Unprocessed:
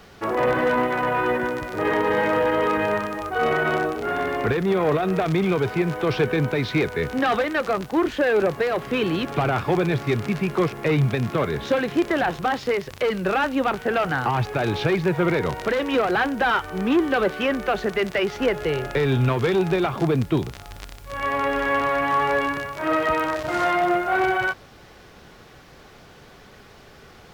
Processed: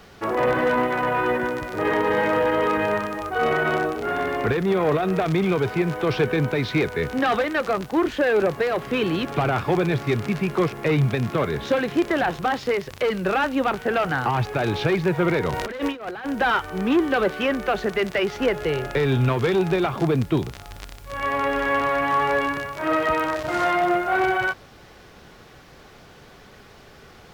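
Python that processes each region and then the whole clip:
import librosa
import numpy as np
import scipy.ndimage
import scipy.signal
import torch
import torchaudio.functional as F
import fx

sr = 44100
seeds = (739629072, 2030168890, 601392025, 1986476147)

y = fx.chain(x, sr, fx.hum_notches(base_hz=60, count=3),
    fx.over_compress(threshold_db=-27.0, ratio=-0.5), at=(15.53, 16.33))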